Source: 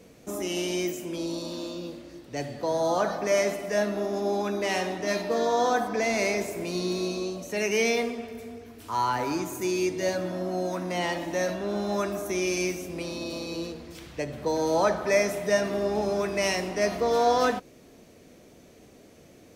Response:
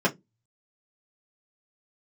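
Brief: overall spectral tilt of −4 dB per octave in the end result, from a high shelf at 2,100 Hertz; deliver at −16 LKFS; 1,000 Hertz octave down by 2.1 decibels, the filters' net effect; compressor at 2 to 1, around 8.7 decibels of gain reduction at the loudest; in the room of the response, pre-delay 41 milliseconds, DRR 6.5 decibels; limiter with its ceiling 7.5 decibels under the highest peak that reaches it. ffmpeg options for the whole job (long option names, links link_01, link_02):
-filter_complex "[0:a]equalizer=frequency=1000:width_type=o:gain=-4,highshelf=frequency=2100:gain=5,acompressor=threshold=-35dB:ratio=2,alimiter=level_in=2.5dB:limit=-24dB:level=0:latency=1,volume=-2.5dB,asplit=2[link_01][link_02];[1:a]atrim=start_sample=2205,adelay=41[link_03];[link_02][link_03]afir=irnorm=-1:irlink=0,volume=-20.5dB[link_04];[link_01][link_04]amix=inputs=2:normalize=0,volume=18.5dB"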